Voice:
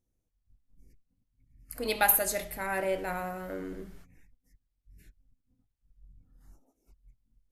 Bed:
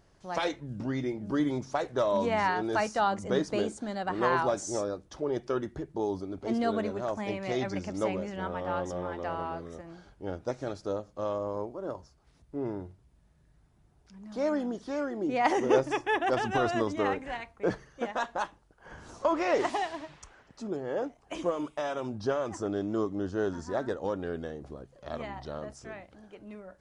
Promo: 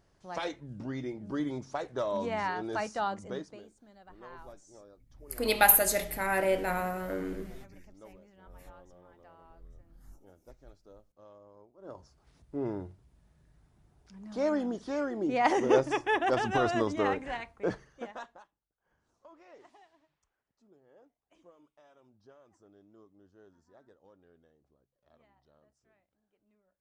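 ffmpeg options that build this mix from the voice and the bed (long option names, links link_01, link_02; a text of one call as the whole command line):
ffmpeg -i stem1.wav -i stem2.wav -filter_complex "[0:a]adelay=3600,volume=3dB[link_01];[1:a]volume=17.5dB,afade=type=out:start_time=3.07:duration=0.54:silence=0.133352,afade=type=in:start_time=11.76:duration=0.44:silence=0.0749894,afade=type=out:start_time=17.4:duration=1.04:silence=0.0375837[link_02];[link_01][link_02]amix=inputs=2:normalize=0" out.wav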